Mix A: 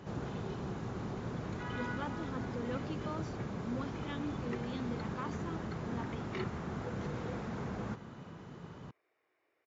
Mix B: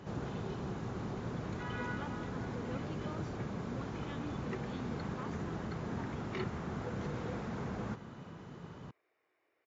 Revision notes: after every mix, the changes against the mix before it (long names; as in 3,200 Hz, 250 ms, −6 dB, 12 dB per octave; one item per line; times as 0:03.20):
speech −5.5 dB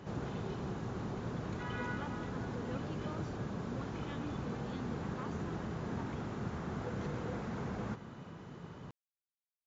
second sound: muted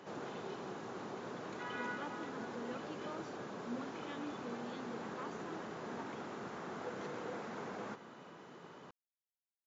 background: add high-pass filter 330 Hz 12 dB per octave